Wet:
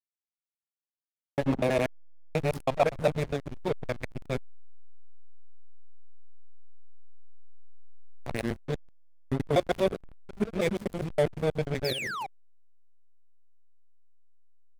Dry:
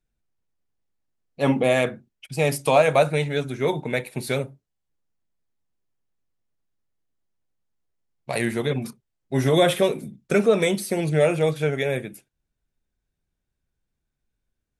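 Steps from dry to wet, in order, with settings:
reversed piece by piece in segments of 81 ms
on a send: single-tap delay 409 ms −19.5 dB
on the sum: gate pattern "xx.x.xxxx" 161 BPM −12 dB
sound drawn into the spectrogram fall, 0:11.84–0:12.27, 720–5,500 Hz −23 dBFS
slack as between gear wheels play −18 dBFS
level −4.5 dB

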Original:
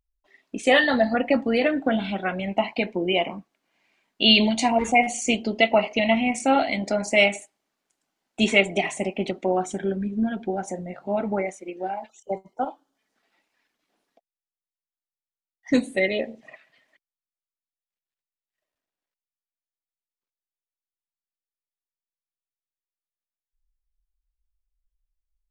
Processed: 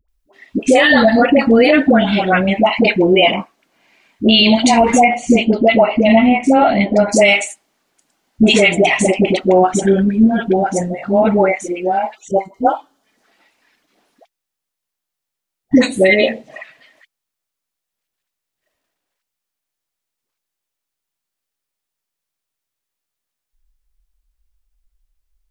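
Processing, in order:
0:04.96–0:07.01: low-pass filter 1,200 Hz 6 dB per octave
all-pass dispersion highs, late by 86 ms, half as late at 560 Hz
boost into a limiter +14.5 dB
level −1 dB

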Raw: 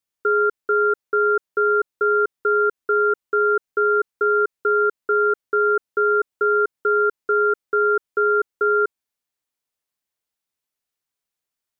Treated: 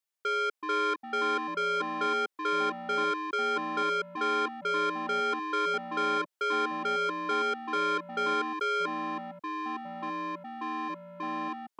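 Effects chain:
high-pass filter 400 Hz 12 dB per octave
soft clipping −23 dBFS, distortion −10 dB
delay with pitch and tempo change per echo 294 ms, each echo −5 semitones, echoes 3, each echo −6 dB
level −3.5 dB

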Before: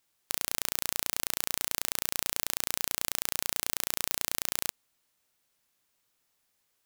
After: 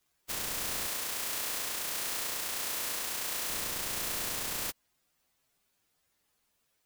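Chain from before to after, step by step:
partials spread apart or drawn together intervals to 122%
0:00.87–0:03.50: low-shelf EQ 230 Hz −11.5 dB
level +8 dB

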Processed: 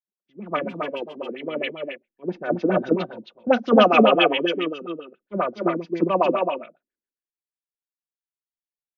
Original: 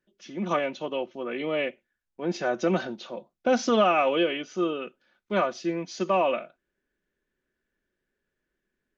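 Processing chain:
on a send: multi-tap delay 42/249/267 ms −18.5/−6.5/−4 dB
0:00.67–0:01.33: on the sum: hum with harmonics 400 Hz, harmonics 38, −50 dBFS −2 dB per octave
auto-filter low-pass sine 7.4 Hz 240–3,600 Hz
multiband upward and downward expander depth 100%

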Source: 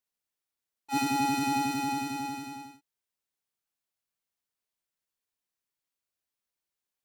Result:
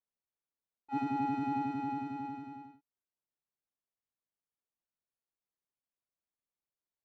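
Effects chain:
Bessel low-pass filter 1,100 Hz, order 2
level −4 dB

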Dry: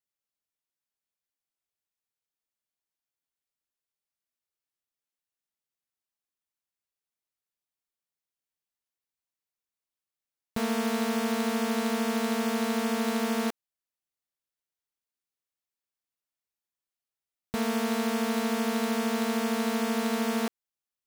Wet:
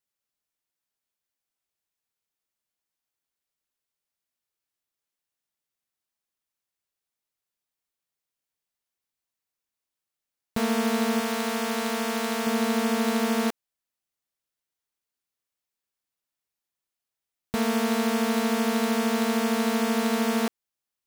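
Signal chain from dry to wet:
0:11.20–0:12.47: parametric band 170 Hz −6 dB 2.7 octaves
level +3.5 dB

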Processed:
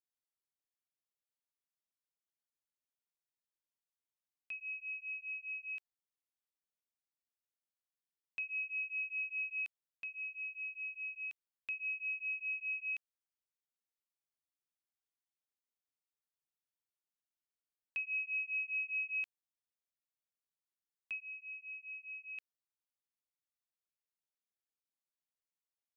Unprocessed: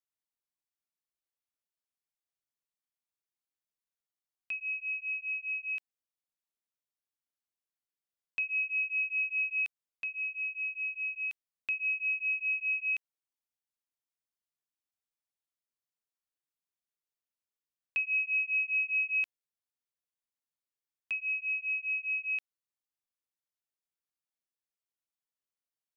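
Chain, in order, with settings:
0:21.20–0:22.38: high-shelf EQ 2,200 Hz −11.5 dB
level −7.5 dB

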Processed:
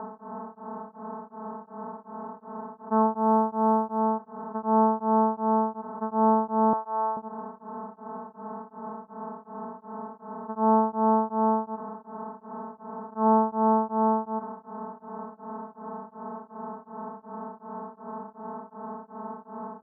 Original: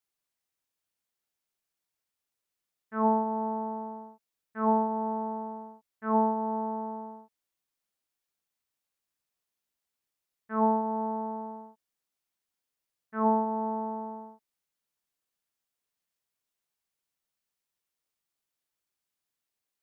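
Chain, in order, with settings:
compressor on every frequency bin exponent 0.2
low-pass filter 1,300 Hz 24 dB per octave
0:03.17–0:03.99: bit-depth reduction 12 bits, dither triangular
0:06.73–0:07.17: high-pass filter 690 Hz 12 dB per octave
tremolo along a rectified sine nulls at 2.7 Hz
level +3.5 dB

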